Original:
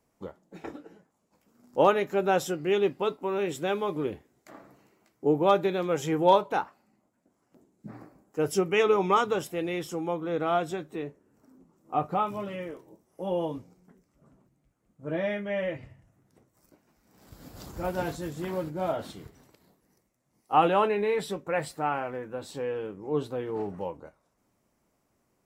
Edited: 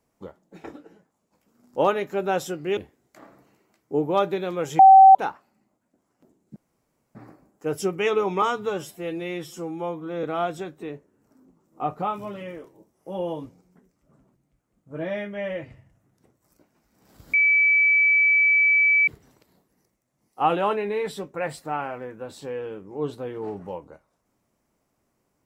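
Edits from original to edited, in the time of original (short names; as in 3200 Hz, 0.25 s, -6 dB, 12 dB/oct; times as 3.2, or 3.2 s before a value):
2.77–4.09 cut
6.11–6.47 bleep 770 Hz -6.5 dBFS
7.88 insert room tone 0.59 s
9.15–10.36 stretch 1.5×
17.46–19.2 bleep 2300 Hz -15 dBFS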